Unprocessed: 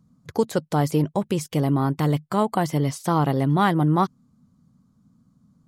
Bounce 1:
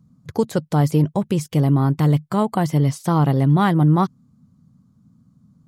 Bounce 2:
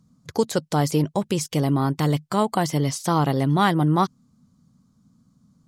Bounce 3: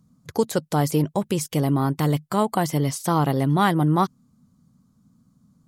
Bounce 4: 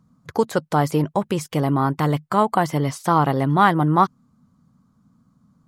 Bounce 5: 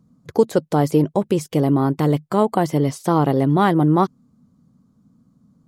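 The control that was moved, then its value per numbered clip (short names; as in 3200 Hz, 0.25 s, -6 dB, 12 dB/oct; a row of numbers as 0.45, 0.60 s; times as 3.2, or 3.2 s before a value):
bell, frequency: 120, 5700, 15000, 1200, 400 Hz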